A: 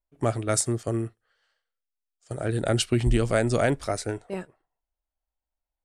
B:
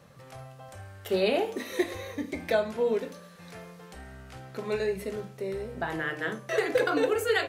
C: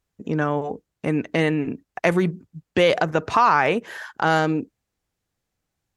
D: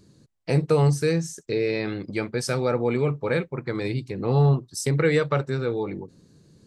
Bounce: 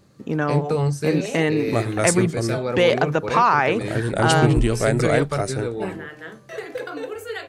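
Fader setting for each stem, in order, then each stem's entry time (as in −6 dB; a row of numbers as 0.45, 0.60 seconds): +2.5, −5.5, 0.0, −2.0 decibels; 1.50, 0.00, 0.00, 0.00 seconds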